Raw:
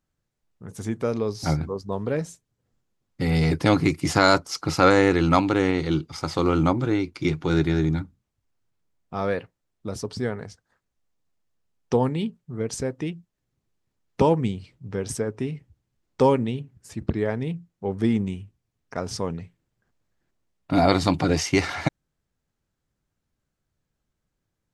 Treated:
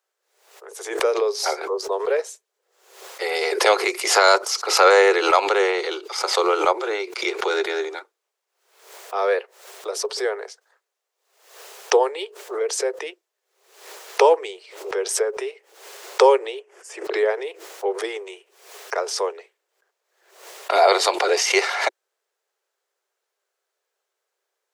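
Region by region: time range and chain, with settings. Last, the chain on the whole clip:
0:16.60–0:17.05: low-pass filter 10,000 Hz 24 dB per octave + parametric band 4,000 Hz −13.5 dB 0.27 octaves
whole clip: Butterworth high-pass 380 Hz 96 dB per octave; boost into a limiter +8.5 dB; background raised ahead of every attack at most 85 dB per second; level −2.5 dB

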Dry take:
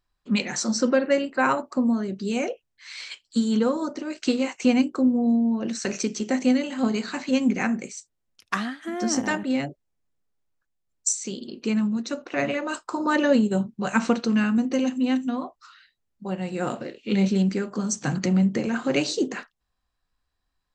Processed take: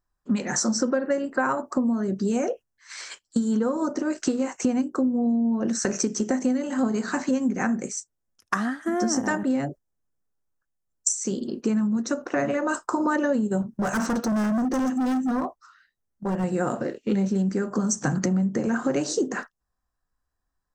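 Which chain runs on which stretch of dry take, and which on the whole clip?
0:13.62–0:16.44: gain into a clipping stage and back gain 28 dB + notch filter 7,100 Hz, Q 16
whole clip: noise gate −41 dBFS, range −9 dB; flat-topped bell 3,100 Hz −11.5 dB 1.3 octaves; downward compressor, threshold −28 dBFS; level +7 dB

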